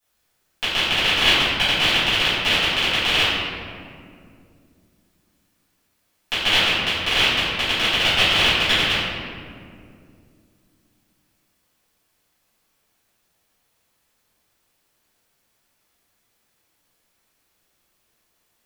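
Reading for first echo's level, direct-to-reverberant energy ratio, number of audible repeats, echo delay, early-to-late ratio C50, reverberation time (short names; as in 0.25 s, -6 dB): none, -16.5 dB, none, none, -2.5 dB, 2.3 s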